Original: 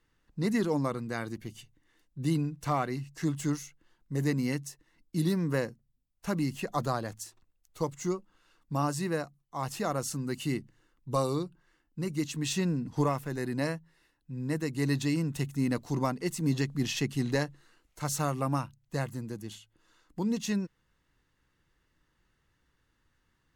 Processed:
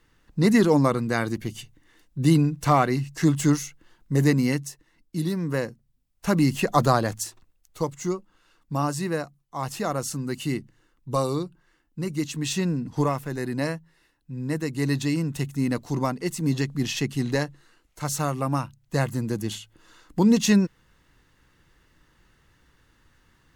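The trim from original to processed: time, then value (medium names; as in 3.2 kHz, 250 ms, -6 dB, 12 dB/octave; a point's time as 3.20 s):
4.14 s +10 dB
5.30 s +1 dB
6.57 s +11 dB
7.24 s +11 dB
7.89 s +4 dB
18.49 s +4 dB
19.42 s +12 dB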